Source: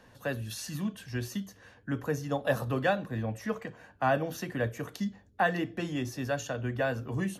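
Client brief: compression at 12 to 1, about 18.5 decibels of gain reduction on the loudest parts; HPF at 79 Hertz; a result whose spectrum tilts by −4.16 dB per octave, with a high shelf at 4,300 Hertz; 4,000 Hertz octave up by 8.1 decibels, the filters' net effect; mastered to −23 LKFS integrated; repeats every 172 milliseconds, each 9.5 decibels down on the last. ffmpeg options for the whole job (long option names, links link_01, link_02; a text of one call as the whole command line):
ffmpeg -i in.wav -af "highpass=79,equalizer=frequency=4000:width_type=o:gain=8,highshelf=frequency=4300:gain=4.5,acompressor=threshold=-40dB:ratio=12,aecho=1:1:172|344|516|688:0.335|0.111|0.0365|0.012,volume=21dB" out.wav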